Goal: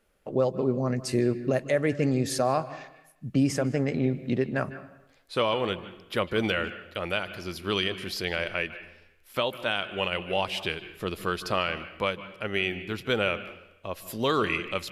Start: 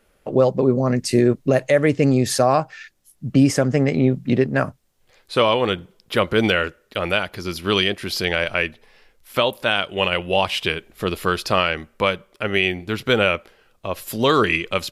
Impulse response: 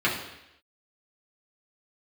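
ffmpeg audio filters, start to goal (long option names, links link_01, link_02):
-filter_complex "[0:a]asplit=2[link_01][link_02];[1:a]atrim=start_sample=2205,adelay=148[link_03];[link_02][link_03]afir=irnorm=-1:irlink=0,volume=-27dB[link_04];[link_01][link_04]amix=inputs=2:normalize=0,volume=-8.5dB"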